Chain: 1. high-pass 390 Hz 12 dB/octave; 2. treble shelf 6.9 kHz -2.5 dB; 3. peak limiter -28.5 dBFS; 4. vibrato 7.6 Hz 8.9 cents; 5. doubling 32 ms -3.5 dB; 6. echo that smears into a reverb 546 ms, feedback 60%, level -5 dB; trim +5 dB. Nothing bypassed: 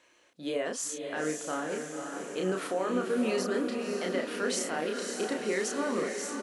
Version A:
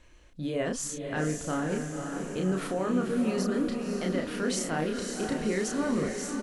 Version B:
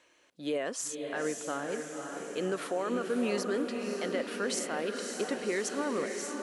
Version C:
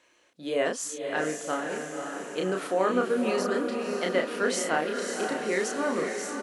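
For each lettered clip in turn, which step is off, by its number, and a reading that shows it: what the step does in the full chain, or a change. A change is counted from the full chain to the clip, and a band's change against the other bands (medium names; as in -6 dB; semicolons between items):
1, 125 Hz band +11.0 dB; 5, momentary loudness spread change -1 LU; 3, mean gain reduction 2.0 dB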